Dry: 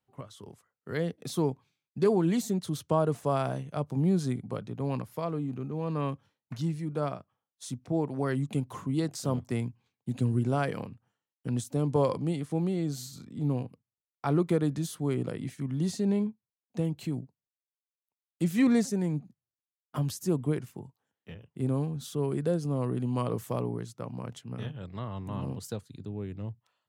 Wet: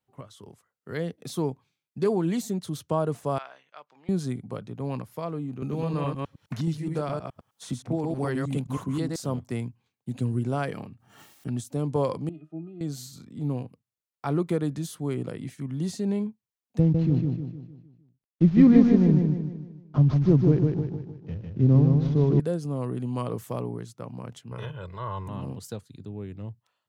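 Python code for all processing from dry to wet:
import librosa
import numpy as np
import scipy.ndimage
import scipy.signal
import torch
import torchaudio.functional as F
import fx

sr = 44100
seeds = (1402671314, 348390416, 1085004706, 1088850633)

y = fx.chain(x, sr, fx.highpass(hz=1400.0, slope=12),
    fx.air_absorb(metres=200.0), at=(3.38, 4.09))
y = fx.chain(y, sr, fx.reverse_delay(ms=105, wet_db=-2),
    fx.band_squash(depth_pct=70), at=(5.62, 9.16))
y = fx.chain(y, sr, fx.notch_comb(f0_hz=500.0),
    fx.pre_swell(db_per_s=71.0), at=(10.73, 11.64))
y = fx.chain(y, sr, fx.highpass(hz=250.0, slope=12),
    fx.octave_resonator(note='D#', decay_s=0.11), at=(12.29, 12.81))
y = fx.chain(y, sr, fx.cvsd(bps=32000),
    fx.tilt_eq(slope=-4.0),
    fx.echo_feedback(ms=153, feedback_pct=45, wet_db=-4.0), at=(16.79, 22.4))
y = fx.chain(y, sr, fx.peak_eq(hz=1100.0, db=8.5, octaves=1.2),
    fx.comb(ms=2.0, depth=0.74),
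    fx.transient(attack_db=-7, sustain_db=3), at=(24.51, 25.29))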